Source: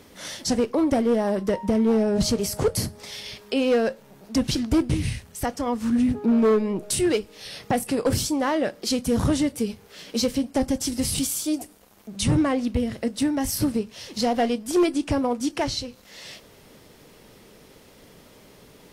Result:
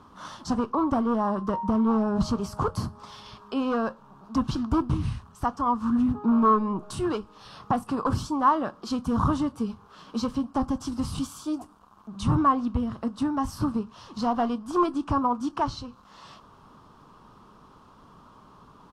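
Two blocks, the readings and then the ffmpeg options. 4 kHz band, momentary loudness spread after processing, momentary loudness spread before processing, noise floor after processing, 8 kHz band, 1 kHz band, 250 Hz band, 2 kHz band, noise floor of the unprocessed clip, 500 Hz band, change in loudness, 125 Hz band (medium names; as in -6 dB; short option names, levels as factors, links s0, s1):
-11.0 dB, 11 LU, 11 LU, -54 dBFS, -15.5 dB, +5.5 dB, -2.5 dB, -7.0 dB, -52 dBFS, -7.5 dB, -3.0 dB, -1.5 dB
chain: -af "firequalizer=gain_entry='entry(220,0);entry(510,-9);entry(1100,14);entry(2000,-16);entry(2900,-8);entry(14000,-23)':delay=0.05:min_phase=1,volume=0.841"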